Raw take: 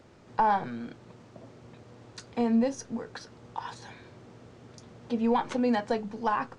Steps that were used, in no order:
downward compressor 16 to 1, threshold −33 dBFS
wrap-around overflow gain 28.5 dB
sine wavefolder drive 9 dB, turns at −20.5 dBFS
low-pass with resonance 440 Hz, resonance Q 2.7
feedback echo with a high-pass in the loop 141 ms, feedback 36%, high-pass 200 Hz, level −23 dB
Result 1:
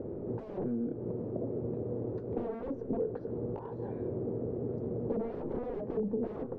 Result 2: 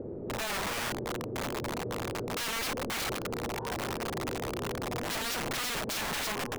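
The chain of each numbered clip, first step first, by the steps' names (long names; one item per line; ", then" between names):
wrap-around overflow, then sine wavefolder, then feedback echo with a high-pass in the loop, then downward compressor, then low-pass with resonance
feedback echo with a high-pass in the loop, then downward compressor, then sine wavefolder, then low-pass with resonance, then wrap-around overflow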